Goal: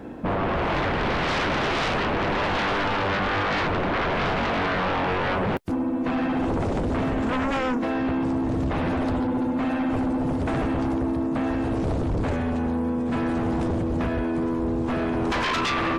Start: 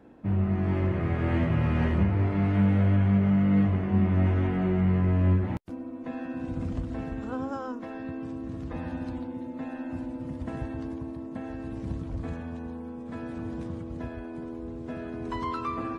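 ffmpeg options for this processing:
ffmpeg -i in.wav -af "aeval=exprs='0.211*sin(PI/2*8.91*val(0)/0.211)':channel_layout=same,volume=-7.5dB" out.wav

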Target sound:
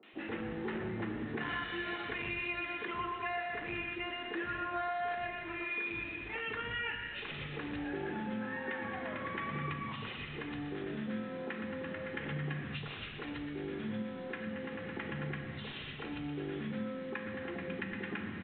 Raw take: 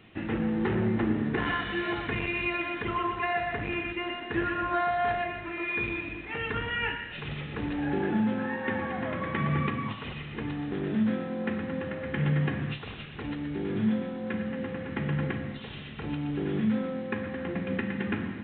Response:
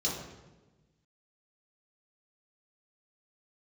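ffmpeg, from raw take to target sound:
-filter_complex "[0:a]areverse,acompressor=mode=upward:threshold=-36dB:ratio=2.5,areverse,equalizer=frequency=79:width=0.36:gain=-7,acrossover=split=230|780[link_01][link_02][link_03];[link_03]adelay=30[link_04];[link_01]adelay=130[link_05];[link_05][link_02][link_04]amix=inputs=3:normalize=0,acompressor=threshold=-39dB:ratio=2"

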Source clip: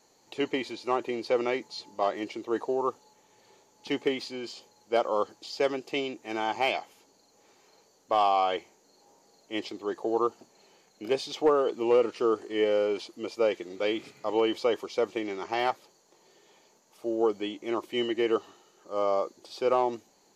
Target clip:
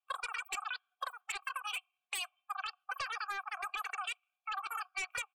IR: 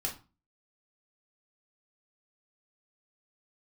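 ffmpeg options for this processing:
-filter_complex "[0:a]asetrate=168021,aresample=44100,asplit=3[link_01][link_02][link_03];[link_01]bandpass=frequency=730:width_type=q:width=8,volume=0dB[link_04];[link_02]bandpass=frequency=1090:width_type=q:width=8,volume=-6dB[link_05];[link_03]bandpass=frequency=2440:width_type=q:width=8,volume=-9dB[link_06];[link_04][link_05][link_06]amix=inputs=3:normalize=0,aemphasis=mode=production:type=75fm,aecho=1:1:2.6:0.45,acrossover=split=110|660[link_07][link_08][link_09];[link_09]aeval=exprs='0.0178*(abs(mod(val(0)/0.0178+3,4)-2)-1)':channel_layout=same[link_10];[link_07][link_08][link_10]amix=inputs=3:normalize=0,afftdn=noise_reduction=27:noise_floor=-53,acompressor=threshold=-44dB:ratio=6,volume=8.5dB"

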